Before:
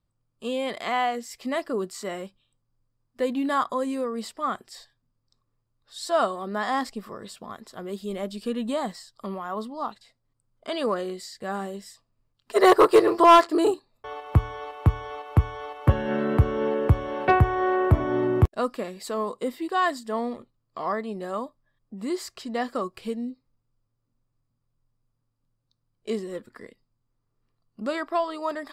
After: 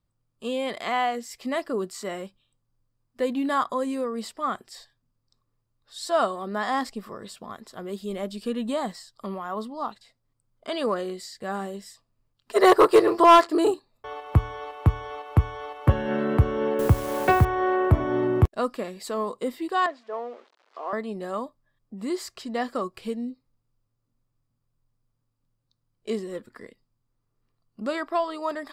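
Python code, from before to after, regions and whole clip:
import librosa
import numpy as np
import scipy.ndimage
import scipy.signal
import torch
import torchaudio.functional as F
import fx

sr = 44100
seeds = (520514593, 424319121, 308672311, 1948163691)

y = fx.chain(x, sr, fx.delta_hold(step_db=-37.0),
    fx.high_shelf(hz=6200.0, db=6.0),
    fx.band_squash(depth_pct=40), at=(16.79, 17.45))
y = fx.chain(y, sr, fx.crossing_spikes(level_db=-26.5),
    fx.highpass(hz=380.0, slope=24),
    fx.spacing_loss(db_at_10k=45), at=(19.86, 20.93))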